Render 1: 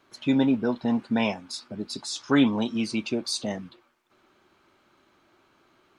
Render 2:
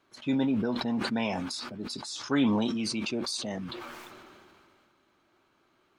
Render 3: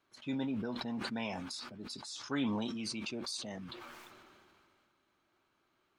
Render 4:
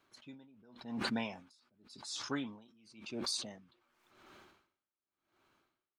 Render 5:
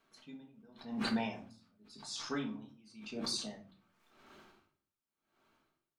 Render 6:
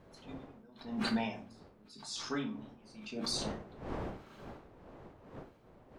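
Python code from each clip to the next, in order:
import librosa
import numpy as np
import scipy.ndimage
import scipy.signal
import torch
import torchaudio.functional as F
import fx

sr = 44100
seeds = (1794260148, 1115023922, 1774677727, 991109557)

y1 = fx.sustainer(x, sr, db_per_s=24.0)
y1 = y1 * librosa.db_to_amplitude(-6.0)
y2 = fx.peak_eq(y1, sr, hz=350.0, db=-3.0, octaves=2.6)
y2 = y2 * librosa.db_to_amplitude(-6.5)
y3 = y2 * 10.0 ** (-31 * (0.5 - 0.5 * np.cos(2.0 * np.pi * 0.91 * np.arange(len(y2)) / sr)) / 20.0)
y3 = y3 * librosa.db_to_amplitude(4.0)
y4 = fx.room_shoebox(y3, sr, seeds[0], volume_m3=300.0, walls='furnished', distance_m=1.6)
y4 = y4 * librosa.db_to_amplitude(-2.5)
y5 = fx.dmg_wind(y4, sr, seeds[1], corner_hz=550.0, level_db=-50.0)
y5 = y5 * librosa.db_to_amplitude(1.0)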